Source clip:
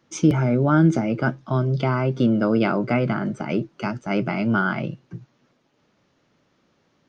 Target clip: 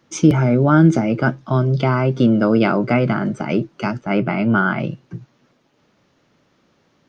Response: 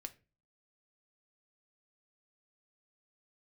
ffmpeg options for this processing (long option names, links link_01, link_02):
-filter_complex "[0:a]asplit=3[link_01][link_02][link_03];[link_01]afade=type=out:start_time=4:duration=0.02[link_04];[link_02]lowpass=3300,afade=type=in:start_time=4:duration=0.02,afade=type=out:start_time=4.78:duration=0.02[link_05];[link_03]afade=type=in:start_time=4.78:duration=0.02[link_06];[link_04][link_05][link_06]amix=inputs=3:normalize=0,volume=4.5dB"